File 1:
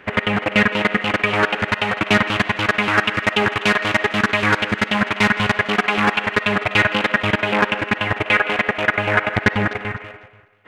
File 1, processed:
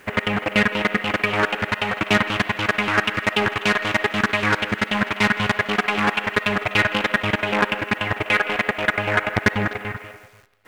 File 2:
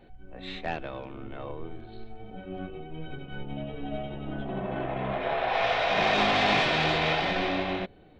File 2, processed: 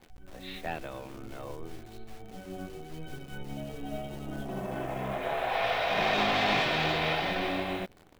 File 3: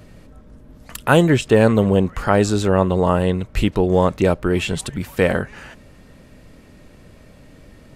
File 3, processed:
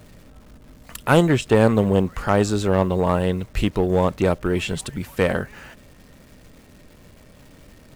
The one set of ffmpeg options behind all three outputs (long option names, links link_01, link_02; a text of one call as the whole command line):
ffmpeg -i in.wav -af "aeval=exprs='0.891*(cos(1*acos(clip(val(0)/0.891,-1,1)))-cos(1*PI/2))+0.224*(cos(2*acos(clip(val(0)/0.891,-1,1)))-cos(2*PI/2))+0.0112*(cos(3*acos(clip(val(0)/0.891,-1,1)))-cos(3*PI/2))+0.00708*(cos(5*acos(clip(val(0)/0.891,-1,1)))-cos(5*PI/2))+0.0316*(cos(8*acos(clip(val(0)/0.891,-1,1)))-cos(8*PI/2))':channel_layout=same,acrusher=bits=9:dc=4:mix=0:aa=0.000001,volume=-3dB" out.wav